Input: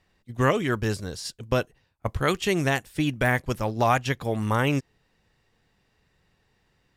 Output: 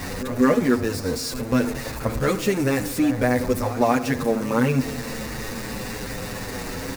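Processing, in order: zero-crossing step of -23 dBFS; thirty-one-band EQ 250 Hz +11 dB, 500 Hz +8 dB, 3150 Hz -10 dB; pre-echo 0.194 s -14 dB; on a send at -14 dB: reverb RT60 0.80 s, pre-delay 33 ms; on the sum: endless flanger 7.8 ms -0.3 Hz

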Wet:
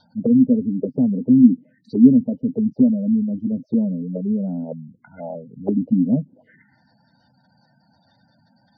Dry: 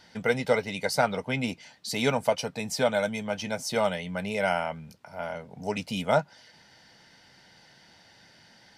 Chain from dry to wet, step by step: envelope phaser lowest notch 350 Hz, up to 2100 Hz, full sweep at -29.5 dBFS; graphic EQ 125/250/500/2000 Hz +6/+12/+6/+4 dB; spectral gate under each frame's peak -15 dB strong; envelope low-pass 260–3800 Hz down, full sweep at -20 dBFS; gain -3.5 dB

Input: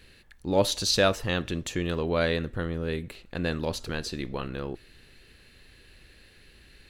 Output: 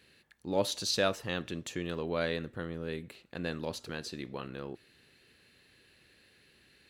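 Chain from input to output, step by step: HPF 120 Hz 12 dB/oct; gain -6.5 dB

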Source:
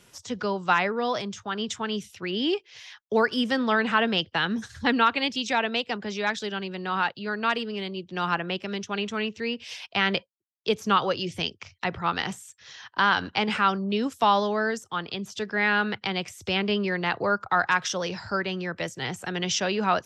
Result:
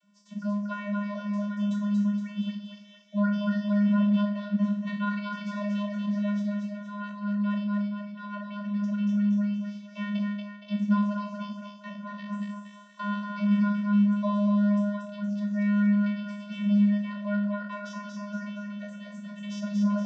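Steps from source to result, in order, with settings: spectral trails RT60 0.46 s; vocoder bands 32, square 205 Hz; split-band echo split 500 Hz, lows 83 ms, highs 0.234 s, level -3 dB; gain -5.5 dB

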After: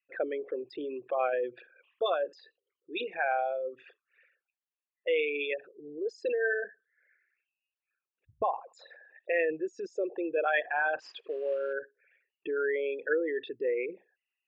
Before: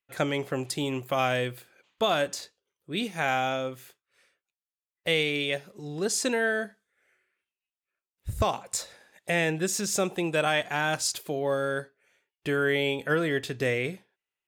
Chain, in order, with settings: formant sharpening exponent 3; 11–11.73 modulation noise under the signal 26 dB; speaker cabinet 340–3400 Hz, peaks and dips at 340 Hz +5 dB, 490 Hz +5 dB, 760 Hz +4 dB, 1100 Hz +8 dB, 1700 Hz +8 dB, 2700 Hz +10 dB; gain -7 dB

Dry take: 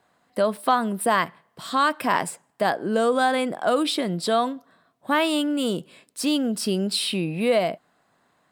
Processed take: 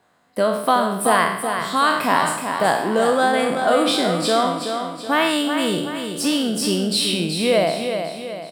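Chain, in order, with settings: spectral trails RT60 0.72 s; feedback echo 0.376 s, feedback 47%, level -7 dB; gain +1.5 dB

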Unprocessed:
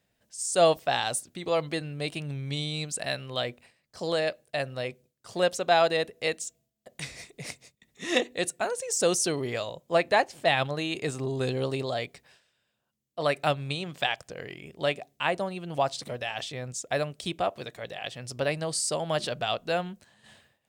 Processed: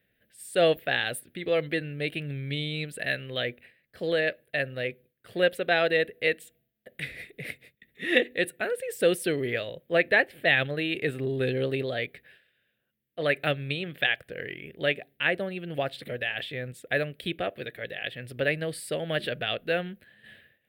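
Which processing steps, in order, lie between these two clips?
EQ curve 180 Hz 0 dB, 500 Hz +3 dB, 1000 Hz -15 dB, 1700 Hz +8 dB, 3600 Hz 0 dB, 6300 Hz -26 dB, 12000 Hz +4 dB

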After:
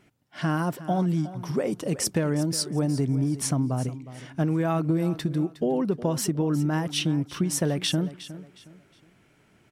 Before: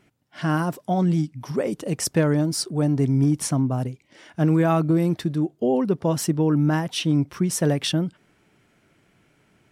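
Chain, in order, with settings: compressor, threshold -21 dBFS, peak gain reduction 7 dB; feedback echo 0.362 s, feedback 31%, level -15 dB

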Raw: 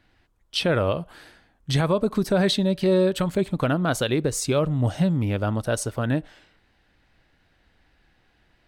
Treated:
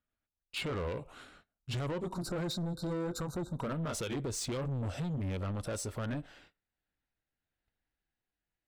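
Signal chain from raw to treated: gliding pitch shift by -3 st ending unshifted; spectral delete 2.07–3.72, 1600–3600 Hz; limiter -17.5 dBFS, peak gain reduction 5.5 dB; gate -56 dBFS, range -22 dB; soft clip -28 dBFS, distortion -10 dB; gain -4 dB

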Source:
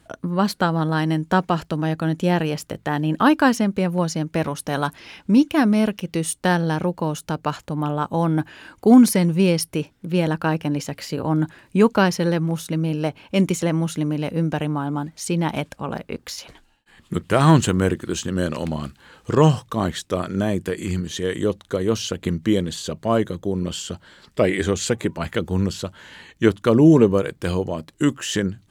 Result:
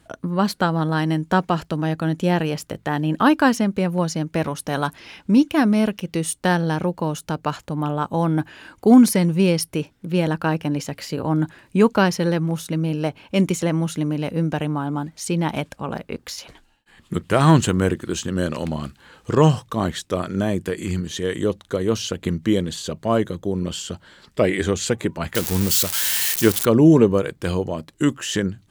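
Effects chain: 25.35–26.65 switching spikes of -11.5 dBFS

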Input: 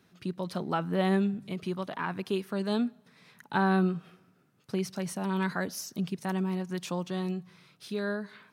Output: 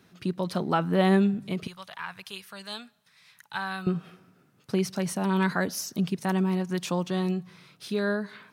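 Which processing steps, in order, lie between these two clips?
1.67–3.87 passive tone stack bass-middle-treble 10-0-10; gain +5 dB

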